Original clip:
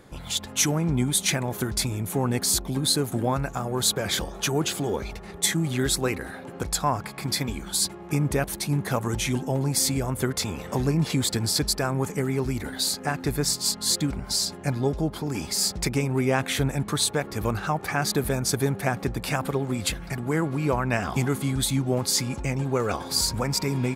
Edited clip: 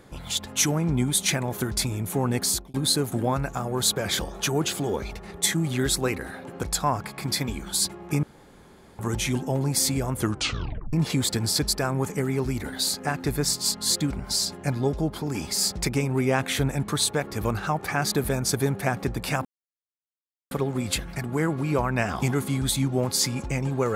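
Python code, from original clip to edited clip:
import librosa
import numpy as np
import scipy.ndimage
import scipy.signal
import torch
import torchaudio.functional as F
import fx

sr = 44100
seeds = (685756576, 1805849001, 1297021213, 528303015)

y = fx.edit(x, sr, fx.fade_out_span(start_s=2.46, length_s=0.28),
    fx.room_tone_fill(start_s=8.23, length_s=0.76),
    fx.tape_stop(start_s=10.17, length_s=0.76),
    fx.insert_silence(at_s=19.45, length_s=1.06), tone=tone)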